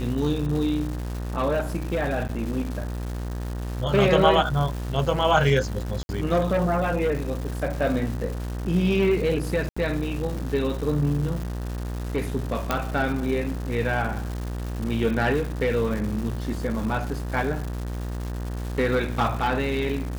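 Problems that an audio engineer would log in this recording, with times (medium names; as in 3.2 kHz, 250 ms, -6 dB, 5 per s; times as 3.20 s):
buzz 60 Hz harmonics 32 -30 dBFS
crackle 400 per s -32 dBFS
2.28–2.29 s: dropout 8.6 ms
6.03–6.09 s: dropout 61 ms
9.69–9.77 s: dropout 75 ms
12.71 s: pop -8 dBFS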